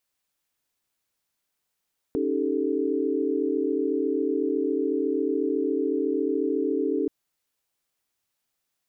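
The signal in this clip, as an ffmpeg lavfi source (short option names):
-f lavfi -i "aevalsrc='0.0398*(sin(2*PI*277.18*t)+sin(2*PI*311.13*t)+sin(2*PI*392*t)+sin(2*PI*440*t))':d=4.93:s=44100"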